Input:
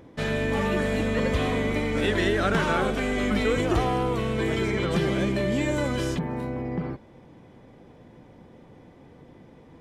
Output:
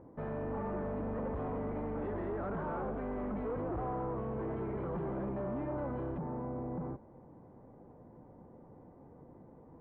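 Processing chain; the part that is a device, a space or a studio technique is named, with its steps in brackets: overdriven synthesiser ladder filter (soft clip -28.5 dBFS, distortion -8 dB; ladder low-pass 1300 Hz, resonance 25%)

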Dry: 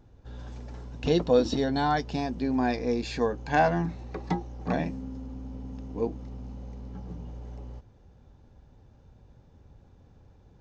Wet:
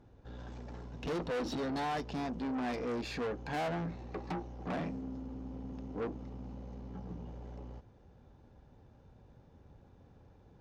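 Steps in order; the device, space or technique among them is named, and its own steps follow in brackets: tube preamp driven hard (tube stage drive 33 dB, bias 0.35; low shelf 110 Hz -7.5 dB; high shelf 4400 Hz -9 dB); gain +1 dB

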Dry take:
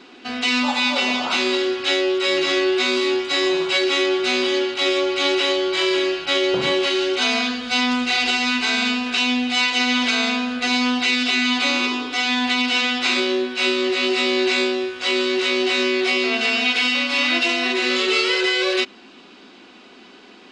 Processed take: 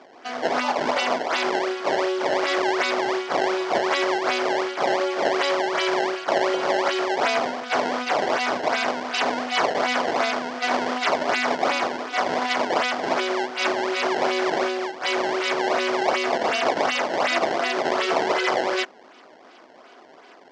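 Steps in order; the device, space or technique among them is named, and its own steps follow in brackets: circuit-bent sampling toy (decimation with a swept rate 21×, swing 160% 2.7 Hz; speaker cabinet 460–5200 Hz, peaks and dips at 670 Hz +5 dB, 2600 Hz -5 dB, 3800 Hz -6 dB)

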